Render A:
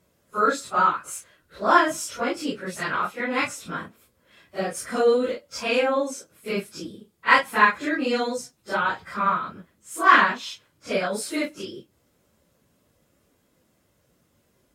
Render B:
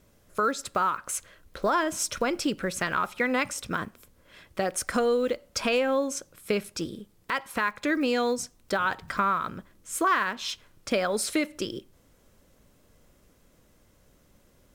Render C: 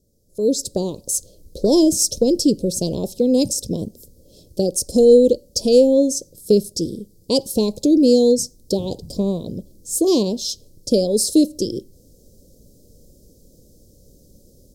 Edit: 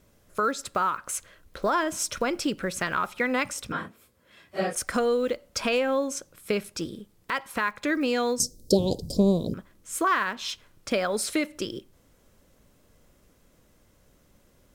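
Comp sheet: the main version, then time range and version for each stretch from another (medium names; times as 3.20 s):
B
3.72–4.75 s: from A
8.40–9.54 s: from C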